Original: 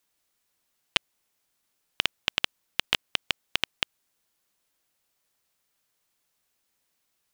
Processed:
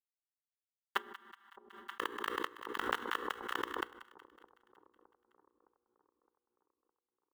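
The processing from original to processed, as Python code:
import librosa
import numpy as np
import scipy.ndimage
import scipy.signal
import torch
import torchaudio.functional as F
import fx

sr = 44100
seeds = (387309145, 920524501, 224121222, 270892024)

y = scipy.signal.sosfilt(scipy.signal.butter(4, 2300.0, 'lowpass', fs=sr, output='sos'), x)
y = fx.pitch_keep_formants(y, sr, semitones=2.5)
y = scipy.signal.sosfilt(scipy.signal.butter(2, 170.0, 'highpass', fs=sr, output='sos'), y)
y = fx.low_shelf(y, sr, hz=310.0, db=-11.5)
y = fx.fixed_phaser(y, sr, hz=650.0, stages=6)
y = fx.quant_dither(y, sr, seeds[0], bits=8, dither='none')
y = fx.hum_notches(y, sr, base_hz=60, count=8)
y = fx.echo_split(y, sr, split_hz=910.0, low_ms=613, high_ms=186, feedback_pct=52, wet_db=-16)
y = fx.rev_fdn(y, sr, rt60_s=0.47, lf_ratio=1.45, hf_ratio=0.7, size_ms=27.0, drr_db=17.0)
y = fx.pre_swell(y, sr, db_per_s=72.0)
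y = F.gain(torch.from_numpy(y), 4.0).numpy()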